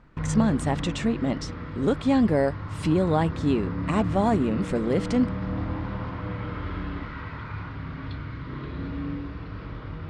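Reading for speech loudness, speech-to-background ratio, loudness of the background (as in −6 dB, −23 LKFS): −25.5 LKFS, 7.5 dB, −33.0 LKFS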